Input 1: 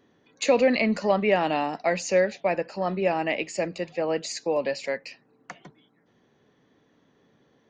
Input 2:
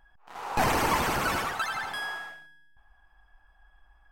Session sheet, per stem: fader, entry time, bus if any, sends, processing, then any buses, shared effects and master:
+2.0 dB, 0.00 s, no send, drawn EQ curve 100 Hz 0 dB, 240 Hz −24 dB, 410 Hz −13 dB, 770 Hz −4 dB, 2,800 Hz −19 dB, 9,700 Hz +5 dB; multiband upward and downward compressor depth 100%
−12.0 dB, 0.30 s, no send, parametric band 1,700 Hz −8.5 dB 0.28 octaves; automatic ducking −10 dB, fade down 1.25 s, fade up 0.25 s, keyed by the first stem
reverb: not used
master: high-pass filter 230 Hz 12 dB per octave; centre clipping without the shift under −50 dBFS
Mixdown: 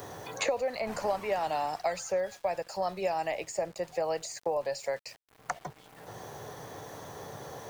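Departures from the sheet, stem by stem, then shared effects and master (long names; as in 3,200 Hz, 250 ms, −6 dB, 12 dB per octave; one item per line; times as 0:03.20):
stem 2: missing parametric band 1,700 Hz −8.5 dB 0.28 octaves
master: missing high-pass filter 230 Hz 12 dB per octave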